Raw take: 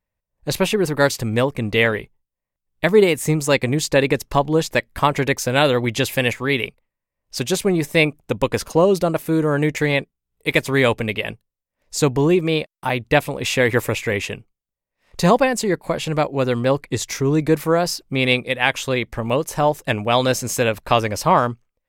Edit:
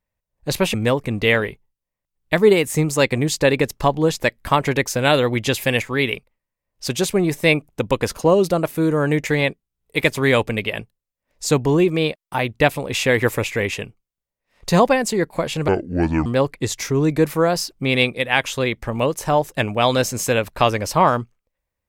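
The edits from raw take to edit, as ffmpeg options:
-filter_complex "[0:a]asplit=4[s0][s1][s2][s3];[s0]atrim=end=0.742[s4];[s1]atrim=start=1.248:end=16.194[s5];[s2]atrim=start=16.19:end=16.56,asetpts=PTS-STARTPTS,asetrate=28224,aresample=44100,atrim=end_sample=25495,asetpts=PTS-STARTPTS[s6];[s3]atrim=start=16.556[s7];[s4][s5]acrossfade=d=0.004:c1=hsin:c2=hsin[s8];[s8][s6]acrossfade=d=0.004:c1=hsin:c2=hsin[s9];[s9][s7]acrossfade=d=0.004:c1=hsin:c2=hsin"

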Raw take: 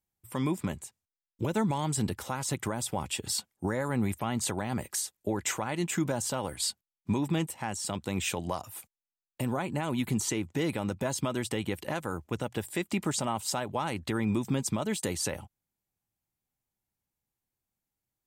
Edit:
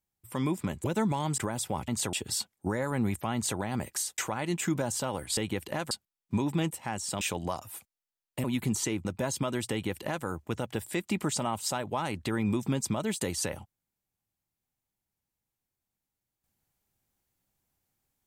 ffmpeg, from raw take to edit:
-filter_complex "[0:a]asplit=11[s0][s1][s2][s3][s4][s5][s6][s7][s8][s9][s10];[s0]atrim=end=0.842[s11];[s1]atrim=start=1.428:end=1.972[s12];[s2]atrim=start=2.608:end=3.112[s13];[s3]atrim=start=4.318:end=4.572[s14];[s4]atrim=start=3.108:end=5.162[s15];[s5]atrim=start=5.478:end=6.672[s16];[s6]atrim=start=11.528:end=12.072[s17];[s7]atrim=start=6.668:end=7.972[s18];[s8]atrim=start=8.228:end=9.462[s19];[s9]atrim=start=9.888:end=10.502[s20];[s10]atrim=start=10.868[s21];[s11][s12]acrossfade=d=0.004:c1=hsin:c2=hsin[s22];[s22][s13]acrossfade=d=0.004:c1=hsin:c2=hsin[s23];[s23][s14]acrossfade=d=0.004:c1=hsin:c2=hsin[s24];[s24][s15]acrossfade=d=0.004:c1=hsin:c2=hsin[s25];[s25][s16]acrossfade=d=0.004:c1=hsin:c2=hsin[s26];[s26][s17]acrossfade=d=0.004:c1=hsin:c2=hsin[s27];[s27][s18]acrossfade=d=0.004:c1=hsin:c2=hsin[s28];[s28][s19]acrossfade=d=0.004:c1=hsin:c2=hsin[s29];[s29][s20]acrossfade=d=0.004:c1=hsin:c2=hsin[s30];[s30][s21]acrossfade=d=0.004:c1=hsin:c2=hsin"

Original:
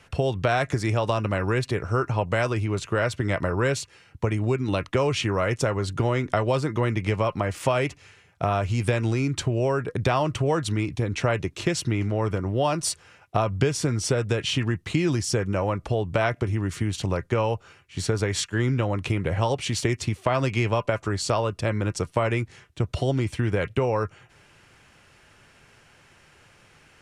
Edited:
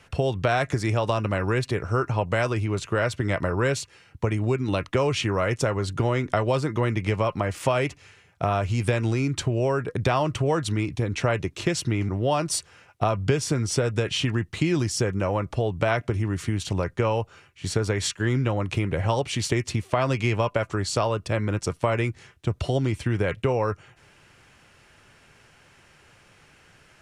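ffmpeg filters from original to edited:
-filter_complex "[0:a]asplit=2[s0][s1];[s0]atrim=end=12.092[s2];[s1]atrim=start=12.418[s3];[s2][s3]acrossfade=d=0.004:c1=hsin:c2=hsin"

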